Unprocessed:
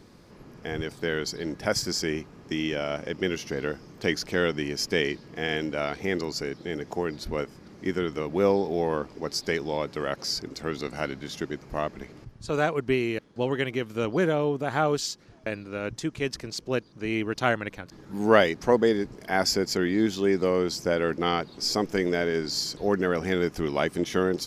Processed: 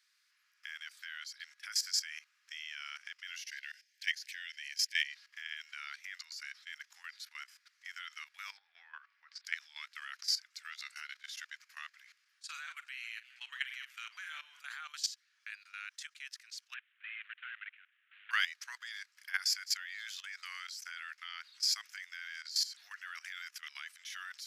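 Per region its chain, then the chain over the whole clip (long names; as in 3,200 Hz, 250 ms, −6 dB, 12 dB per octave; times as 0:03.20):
0:03.41–0:05.10: Butterworth high-pass 1,600 Hz 72 dB per octave + hard clipping −15.5 dBFS
0:08.57–0:09.45: low-pass filter 2,000 Hz + hum removal 378.3 Hz, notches 3
0:12.36–0:14.60: double-tracking delay 44 ms −9 dB + feedback echo with a swinging delay time 139 ms, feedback 68%, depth 218 cents, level −22 dB
0:16.74–0:18.31: variable-slope delta modulation 16 kbit/s + high-pass filter 1,300 Hz 24 dB per octave + high-frequency loss of the air 54 metres
whole clip: Butterworth high-pass 1,500 Hz 36 dB per octave; output level in coarse steps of 15 dB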